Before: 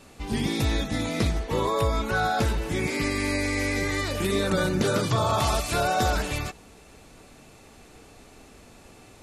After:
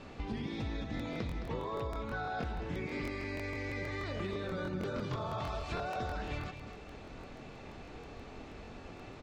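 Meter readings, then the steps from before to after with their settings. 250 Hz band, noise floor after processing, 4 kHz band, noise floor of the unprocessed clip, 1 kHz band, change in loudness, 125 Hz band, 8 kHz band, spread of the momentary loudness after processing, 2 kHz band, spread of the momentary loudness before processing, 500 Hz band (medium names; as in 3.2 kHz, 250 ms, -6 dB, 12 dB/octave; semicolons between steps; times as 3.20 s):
-11.5 dB, -49 dBFS, -16.5 dB, -51 dBFS, -13.0 dB, -14.0 dB, -11.5 dB, -25.5 dB, 12 LU, -13.0 dB, 4 LU, -12.0 dB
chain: distance through air 190 m; compression 6:1, threshold -39 dBFS, peak gain reduction 17.5 dB; delay 216 ms -9 dB; crackling interface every 0.16 s, samples 1024, repeat, from 0.95 s; trim +2.5 dB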